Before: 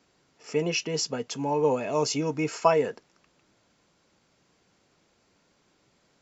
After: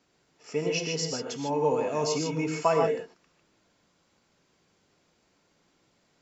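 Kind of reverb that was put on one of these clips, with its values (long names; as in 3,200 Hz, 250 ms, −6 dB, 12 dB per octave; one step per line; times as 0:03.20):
reverb whose tail is shaped and stops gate 170 ms rising, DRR 2.5 dB
level −3.5 dB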